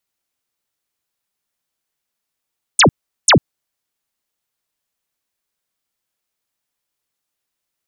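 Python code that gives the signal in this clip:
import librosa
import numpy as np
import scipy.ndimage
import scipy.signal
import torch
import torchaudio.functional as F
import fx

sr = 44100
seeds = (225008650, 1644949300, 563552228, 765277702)

y = fx.laser_zaps(sr, level_db=-6, start_hz=10000.0, end_hz=93.0, length_s=0.1, wave='sine', shots=2, gap_s=0.39)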